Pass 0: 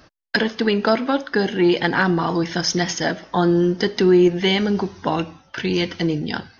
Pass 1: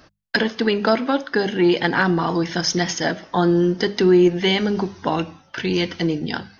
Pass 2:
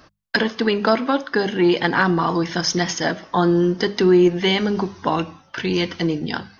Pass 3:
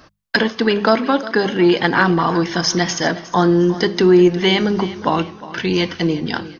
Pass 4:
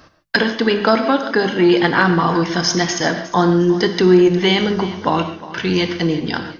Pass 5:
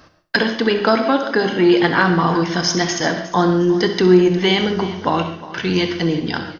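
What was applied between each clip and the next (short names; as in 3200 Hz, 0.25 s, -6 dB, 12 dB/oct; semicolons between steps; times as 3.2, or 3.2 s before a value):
notches 50/100/150/200 Hz
bell 1100 Hz +5 dB 0.34 oct
feedback echo 0.358 s, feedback 40%, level -16.5 dB; gain +3 dB
non-linear reverb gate 0.17 s flat, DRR 8 dB
feedback echo 66 ms, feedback 29%, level -12.5 dB; gain -1 dB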